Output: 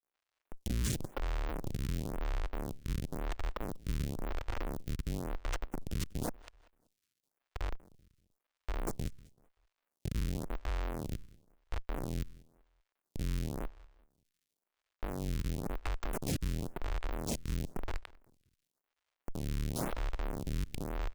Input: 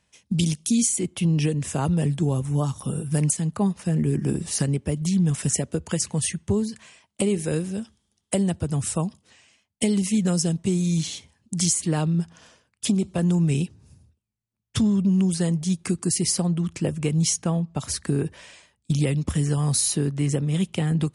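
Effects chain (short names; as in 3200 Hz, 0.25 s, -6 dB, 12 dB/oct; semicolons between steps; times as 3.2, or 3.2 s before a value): octaver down 2 oct, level +2 dB; high shelf 2900 Hz -5 dB; transient shaper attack -7 dB, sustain +8 dB; compressor 3:1, threshold -31 dBFS, peak gain reduction 13 dB; auto swell 0.35 s; Schmitt trigger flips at -26 dBFS; crackle 190/s -66 dBFS; feedback echo 0.192 s, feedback 36%, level -22 dB; photocell phaser 0.96 Hz; gain +2.5 dB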